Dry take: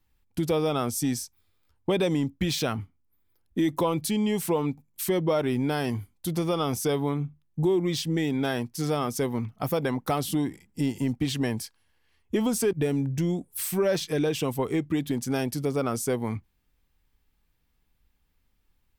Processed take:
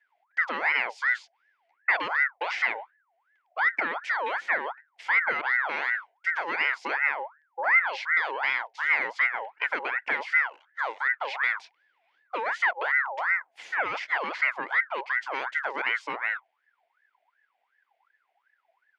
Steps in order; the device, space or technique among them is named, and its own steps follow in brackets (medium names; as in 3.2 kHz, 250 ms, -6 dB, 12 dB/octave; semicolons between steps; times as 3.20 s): voice changer toy (ring modulator with a swept carrier 1.2 kHz, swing 45%, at 2.7 Hz; cabinet simulation 580–4000 Hz, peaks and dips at 600 Hz -3 dB, 1.2 kHz -9 dB, 2.1 kHz +9 dB, 4 kHz -7 dB); trim +2 dB